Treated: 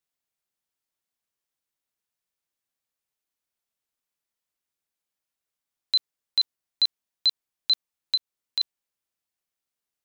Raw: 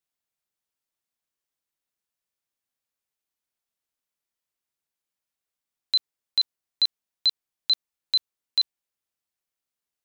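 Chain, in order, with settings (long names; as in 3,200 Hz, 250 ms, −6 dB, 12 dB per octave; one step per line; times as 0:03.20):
0:08.15–0:08.61: downward compressor, threshold −25 dBFS, peak gain reduction 7.5 dB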